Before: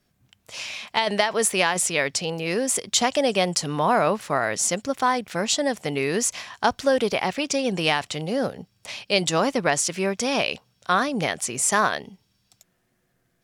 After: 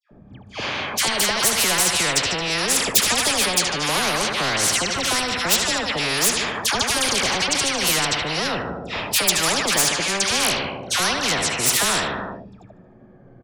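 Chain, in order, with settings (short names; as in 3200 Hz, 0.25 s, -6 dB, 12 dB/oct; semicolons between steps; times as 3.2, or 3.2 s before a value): moving spectral ripple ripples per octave 2, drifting -0.32 Hz, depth 8 dB; on a send: feedback echo 75 ms, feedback 52%, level -13.5 dB; on the sum: low-pass opened by the level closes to 670 Hz, open at -15.5 dBFS; in parallel at -9.5 dB: sine folder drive 11 dB, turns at -3.5 dBFS; on the sum: dispersion lows, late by 0.11 s, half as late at 1500 Hz; spectral compressor 4:1; gain -1 dB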